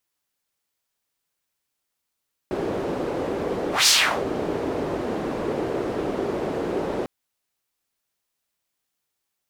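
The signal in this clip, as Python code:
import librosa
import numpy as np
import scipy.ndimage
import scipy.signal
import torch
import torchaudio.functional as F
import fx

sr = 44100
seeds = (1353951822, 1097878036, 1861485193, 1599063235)

y = fx.whoosh(sr, seeds[0], length_s=4.55, peak_s=1.36, rise_s=0.17, fall_s=0.39, ends_hz=410.0, peak_hz=5500.0, q=1.7, swell_db=11)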